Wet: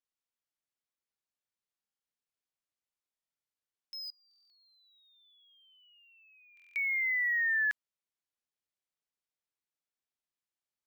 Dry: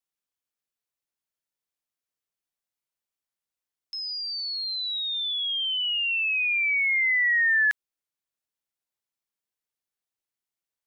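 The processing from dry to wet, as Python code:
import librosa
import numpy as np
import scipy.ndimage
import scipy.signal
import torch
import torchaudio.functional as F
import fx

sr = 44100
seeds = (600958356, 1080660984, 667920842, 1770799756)

y = fx.curve_eq(x, sr, hz=(690.0, 1200.0, 2000.0), db=(0, 13, -29), at=(4.1, 6.75))
y = fx.buffer_glitch(y, sr, at_s=(1.81, 3.1, 4.29, 6.55), block=1024, repeats=8)
y = np.interp(np.arange(len(y)), np.arange(len(y))[::2], y[::2])
y = F.gain(torch.from_numpy(y), -7.5).numpy()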